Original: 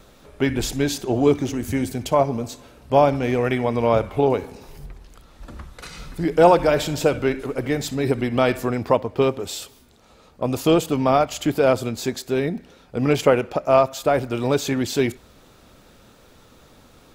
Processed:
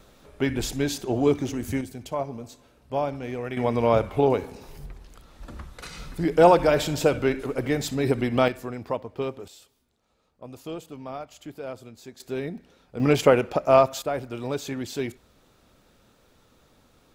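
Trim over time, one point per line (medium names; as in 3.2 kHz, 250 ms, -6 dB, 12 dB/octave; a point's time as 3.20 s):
-4 dB
from 1.81 s -11 dB
from 3.57 s -2 dB
from 8.48 s -10.5 dB
from 9.48 s -18.5 dB
from 12.20 s -8.5 dB
from 13.00 s -1 dB
from 14.02 s -9 dB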